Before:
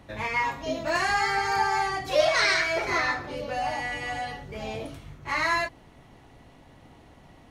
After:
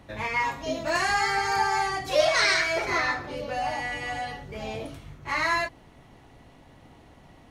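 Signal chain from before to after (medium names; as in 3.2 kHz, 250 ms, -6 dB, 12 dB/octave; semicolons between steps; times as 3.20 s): 0.40–2.86 s: peaking EQ 8.7 kHz +3.5 dB 1.5 oct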